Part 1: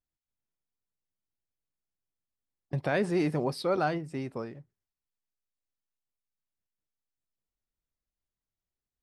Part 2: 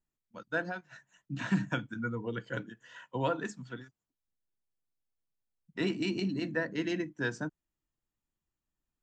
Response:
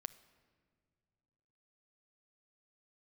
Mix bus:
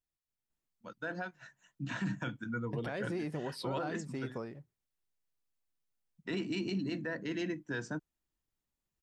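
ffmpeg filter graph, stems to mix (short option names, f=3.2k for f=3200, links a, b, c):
-filter_complex "[0:a]acompressor=threshold=-31dB:ratio=6,volume=-3dB[a];[1:a]adelay=500,volume=-1.5dB[b];[a][b]amix=inputs=2:normalize=0,alimiter=level_in=3.5dB:limit=-24dB:level=0:latency=1:release=16,volume=-3.5dB"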